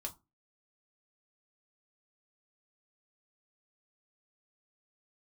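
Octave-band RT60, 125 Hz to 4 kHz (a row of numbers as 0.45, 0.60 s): 0.35, 0.35, 0.25, 0.25, 0.15, 0.15 s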